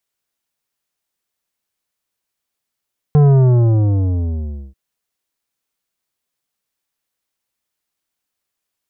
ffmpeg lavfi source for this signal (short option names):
-f lavfi -i "aevalsrc='0.398*clip((1.59-t)/1.52,0,1)*tanh(3.55*sin(2*PI*150*1.59/log(65/150)*(exp(log(65/150)*t/1.59)-1)))/tanh(3.55)':d=1.59:s=44100"